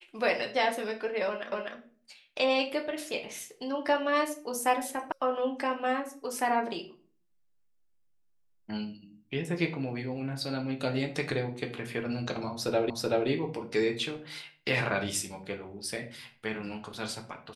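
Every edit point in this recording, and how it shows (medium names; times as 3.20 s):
1.52 s: repeat of the last 0.25 s
5.12 s: sound stops dead
12.90 s: repeat of the last 0.38 s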